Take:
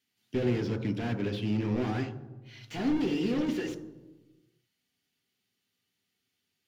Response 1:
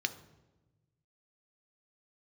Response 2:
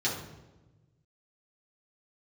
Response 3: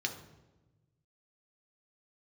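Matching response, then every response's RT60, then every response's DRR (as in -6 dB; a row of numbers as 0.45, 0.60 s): 1; 1.1, 1.1, 1.1 s; 8.5, -7.0, 2.5 dB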